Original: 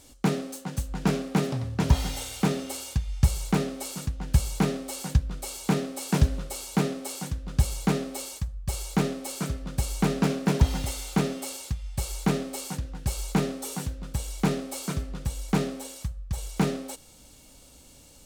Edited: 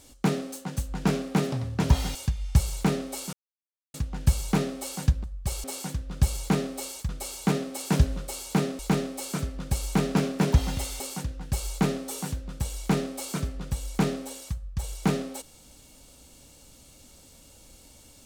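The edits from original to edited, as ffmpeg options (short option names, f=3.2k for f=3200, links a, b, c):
-filter_complex "[0:a]asplit=8[a][b][c][d][e][f][g][h];[a]atrim=end=2.152[i];[b]atrim=start=2.828:end=4.01,asetpts=PTS-STARTPTS,afade=t=out:st=1.178:d=0.004:c=hsin,apad=pad_dur=0.61[j];[c]atrim=start=4.01:end=5.312,asetpts=PTS-STARTPTS,afade=t=in:d=0.004:c=hsin[k];[d]atrim=start=8.458:end=8.862[l];[e]atrim=start=7.008:end=8.462[m];[f]atrim=start=5.308:end=7.012[n];[g]atrim=start=8.858:end=11.072[o];[h]atrim=start=12.538[p];[j][k]concat=n=2:v=0:a=1[q];[i][q]acrossfade=d=0.004:c1=hsin:c2=hsin[r];[r][l]acrossfade=d=0.004:c1=hsin:c2=hsin[s];[s][m]acrossfade=d=0.004:c1=hsin:c2=hsin[t];[t][n]acrossfade=d=0.004:c1=hsin:c2=hsin[u];[u][o]acrossfade=d=0.004:c1=hsin:c2=hsin[v];[v][p]acrossfade=d=0.004:c1=hsin:c2=hsin"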